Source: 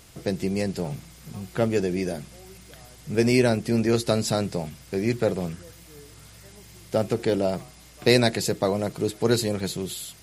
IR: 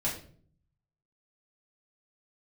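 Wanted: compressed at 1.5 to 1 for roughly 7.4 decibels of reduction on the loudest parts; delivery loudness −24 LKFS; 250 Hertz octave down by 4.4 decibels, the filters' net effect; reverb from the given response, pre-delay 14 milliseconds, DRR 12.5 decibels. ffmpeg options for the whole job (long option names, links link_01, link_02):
-filter_complex "[0:a]equalizer=frequency=250:width_type=o:gain=-6,acompressor=threshold=-36dB:ratio=1.5,asplit=2[link_01][link_02];[1:a]atrim=start_sample=2205,adelay=14[link_03];[link_02][link_03]afir=irnorm=-1:irlink=0,volume=-18.5dB[link_04];[link_01][link_04]amix=inputs=2:normalize=0,volume=8.5dB"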